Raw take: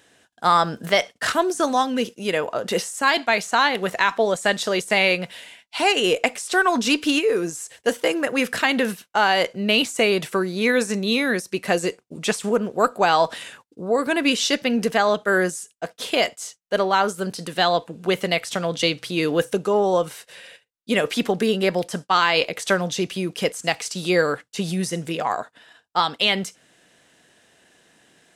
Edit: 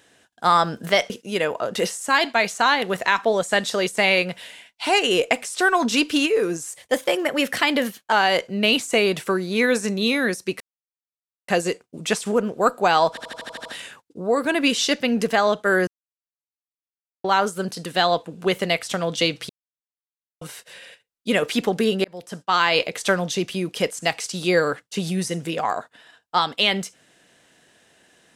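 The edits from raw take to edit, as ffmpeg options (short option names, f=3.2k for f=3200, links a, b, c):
-filter_complex "[0:a]asplit=17[a][b][c][d][e][f][g][h][i][j][k][l][m][n][o][p][q];[a]atrim=end=1.102[r];[b]atrim=start=2.028:end=7.644[s];[c]atrim=start=7.64:end=9.18,asetpts=PTS-STARTPTS,asetrate=48069,aresample=44100,atrim=end_sample=62306,asetpts=PTS-STARTPTS[t];[d]atrim=start=9.176:end=11.66,asetpts=PTS-STARTPTS,afade=t=out:st=2.48:d=0.004:c=hsin,apad=pad_dur=0.88[u];[e]atrim=start=11.66:end=13.352,asetpts=PTS-STARTPTS,afade=t=in:d=0.004:c=hsin[v];[f]atrim=start=13.268:end=13.352[w];[g]atrim=start=13.268:end=13.352[x];[h]atrim=start=13.268:end=13.352[y];[i]atrim=start=13.268:end=13.352[z];[j]atrim=start=13.268:end=13.352[aa];[k]atrim=start=13.268:end=13.352[ab];[l]atrim=start=13.268:end=15.49,asetpts=PTS-STARTPTS,afade=t=out:st=2.218:d=0.004:c=hsin[ac];[m]atrim=start=15.49:end=16.86,asetpts=PTS-STARTPTS,volume=0[ad];[n]atrim=start=16.86:end=19.11,asetpts=PTS-STARTPTS,afade=t=in:d=0.004:c=hsin,afade=t=out:st=2.246:d=0.004:c=hsin[ae];[o]atrim=start=19.11:end=20.03,asetpts=PTS-STARTPTS,volume=0[af];[p]atrim=start=20.03:end=21.66,asetpts=PTS-STARTPTS,afade=t=in:d=0.004:c=hsin,afade=t=out:st=1.626:d=0.004:c=hsin[ag];[q]atrim=start=21.66,asetpts=PTS-STARTPTS,afade=t=in:d=0.59[ah];[r][s]acrossfade=d=0.004:c1=hsin:c2=hsin[ai];[ai][t]acrossfade=d=0.004:c1=hsin:c2=hsin[aj];[u][v]concat=n=2:v=0:a=1[ak];[aj][ak]acrossfade=d=0.004:c1=hsin:c2=hsin[al];[al][w]acrossfade=d=0.004:c1=hsin:c2=hsin[am];[am][x]acrossfade=d=0.004:c1=hsin:c2=hsin[an];[an][y]acrossfade=d=0.004:c1=hsin:c2=hsin[ao];[ao][z]acrossfade=d=0.004:c1=hsin:c2=hsin[ap];[ap][aa]acrossfade=d=0.004:c1=hsin:c2=hsin[aq];[aq][ab]acrossfade=d=0.004:c1=hsin:c2=hsin[ar];[ac][ad][ae][af][ag][ah]concat=n=6:v=0:a=1[as];[ar][as]acrossfade=d=0.004:c1=hsin:c2=hsin"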